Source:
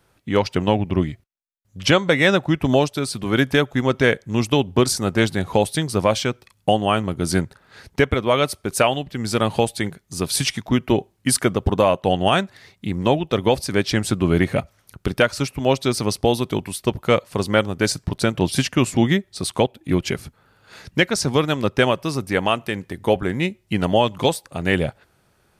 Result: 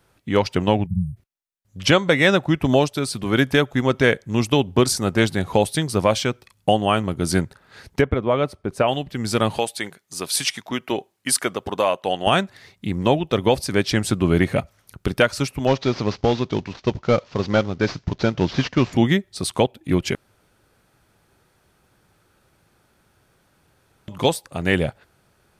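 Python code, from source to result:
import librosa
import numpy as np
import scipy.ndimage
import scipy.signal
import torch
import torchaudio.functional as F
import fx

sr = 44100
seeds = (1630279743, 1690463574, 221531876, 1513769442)

y = fx.spec_erase(x, sr, start_s=0.86, length_s=0.31, low_hz=210.0, high_hz=8100.0)
y = fx.lowpass(y, sr, hz=1000.0, slope=6, at=(8.0, 8.87), fade=0.02)
y = fx.highpass(y, sr, hz=630.0, slope=6, at=(9.58, 12.27))
y = fx.cvsd(y, sr, bps=32000, at=(15.67, 18.93))
y = fx.edit(y, sr, fx.room_tone_fill(start_s=20.15, length_s=3.93), tone=tone)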